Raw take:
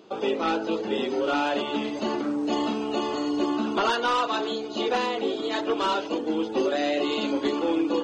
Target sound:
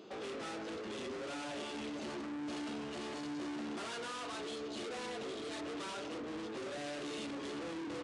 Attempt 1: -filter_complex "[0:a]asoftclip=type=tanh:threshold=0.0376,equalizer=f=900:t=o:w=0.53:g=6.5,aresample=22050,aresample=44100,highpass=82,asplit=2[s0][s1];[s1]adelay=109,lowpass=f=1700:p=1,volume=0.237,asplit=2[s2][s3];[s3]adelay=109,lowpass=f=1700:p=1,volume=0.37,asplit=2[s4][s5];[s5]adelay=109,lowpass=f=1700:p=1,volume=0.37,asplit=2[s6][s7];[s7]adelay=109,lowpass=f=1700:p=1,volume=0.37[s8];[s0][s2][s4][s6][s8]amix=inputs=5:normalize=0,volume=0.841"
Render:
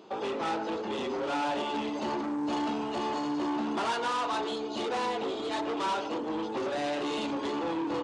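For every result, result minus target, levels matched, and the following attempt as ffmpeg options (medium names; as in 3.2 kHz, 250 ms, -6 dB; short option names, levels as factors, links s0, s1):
1 kHz band +5.0 dB; saturation: distortion -5 dB
-filter_complex "[0:a]asoftclip=type=tanh:threshold=0.0376,equalizer=f=900:t=o:w=0.53:g=-3.5,aresample=22050,aresample=44100,highpass=82,asplit=2[s0][s1];[s1]adelay=109,lowpass=f=1700:p=1,volume=0.237,asplit=2[s2][s3];[s3]adelay=109,lowpass=f=1700:p=1,volume=0.37,asplit=2[s4][s5];[s5]adelay=109,lowpass=f=1700:p=1,volume=0.37,asplit=2[s6][s7];[s7]adelay=109,lowpass=f=1700:p=1,volume=0.37[s8];[s0][s2][s4][s6][s8]amix=inputs=5:normalize=0,volume=0.841"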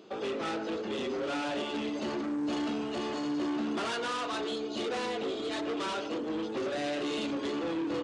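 saturation: distortion -5 dB
-filter_complex "[0:a]asoftclip=type=tanh:threshold=0.0106,equalizer=f=900:t=o:w=0.53:g=-3.5,aresample=22050,aresample=44100,highpass=82,asplit=2[s0][s1];[s1]adelay=109,lowpass=f=1700:p=1,volume=0.237,asplit=2[s2][s3];[s3]adelay=109,lowpass=f=1700:p=1,volume=0.37,asplit=2[s4][s5];[s5]adelay=109,lowpass=f=1700:p=1,volume=0.37,asplit=2[s6][s7];[s7]adelay=109,lowpass=f=1700:p=1,volume=0.37[s8];[s0][s2][s4][s6][s8]amix=inputs=5:normalize=0,volume=0.841"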